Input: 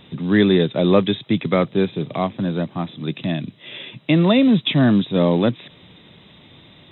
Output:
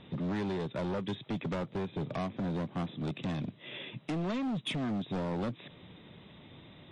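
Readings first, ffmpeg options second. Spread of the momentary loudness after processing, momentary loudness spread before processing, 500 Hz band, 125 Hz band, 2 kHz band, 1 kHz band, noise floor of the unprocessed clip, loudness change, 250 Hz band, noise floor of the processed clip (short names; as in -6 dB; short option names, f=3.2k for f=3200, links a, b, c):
19 LU, 12 LU, -18.0 dB, -14.5 dB, -16.0 dB, -13.0 dB, -49 dBFS, -17.0 dB, -17.0 dB, -56 dBFS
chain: -af "aemphasis=mode=reproduction:type=75fm,acompressor=threshold=-20dB:ratio=16,asoftclip=type=hard:threshold=-25.5dB,volume=-5dB" -ar 24000 -c:a libmp3lame -b:a 40k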